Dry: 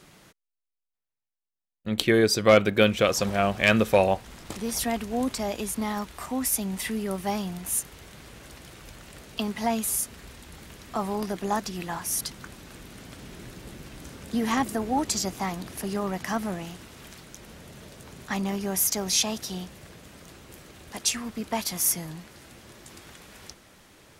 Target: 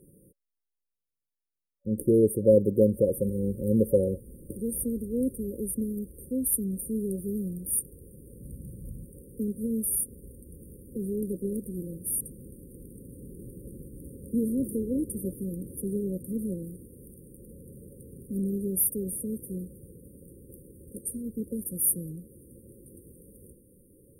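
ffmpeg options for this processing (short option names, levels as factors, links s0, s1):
-filter_complex "[0:a]asettb=1/sr,asplit=3[s0][s1][s2];[s0]atrim=end=8.404[s3];[s1]atrim=start=8.4:end=9.06,asetpts=PTS-STARTPTS,afade=t=in:d=0.004:c=qsin,afade=t=out:st=0.656:d=0.004:c=qsin,lowshelf=f=260:t=q:w=1.5:g=7.5[s4];[s2]atrim=start=9.056[s5];[s3][s4]acrossfade=d=0.004:c1=hsin:c2=qsin[s6];[s6][s5]acrossfade=d=0.004:c1=qsin:c2=hsin,afftfilt=real='re*(1-between(b*sr/4096,560,8600))':imag='im*(1-between(b*sr/4096,560,8600))':win_size=4096:overlap=0.75"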